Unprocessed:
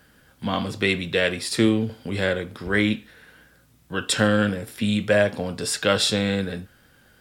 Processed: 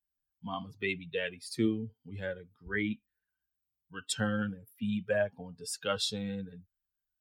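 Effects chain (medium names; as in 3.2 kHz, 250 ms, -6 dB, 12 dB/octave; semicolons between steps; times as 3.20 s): expander on every frequency bin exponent 2; trim -8 dB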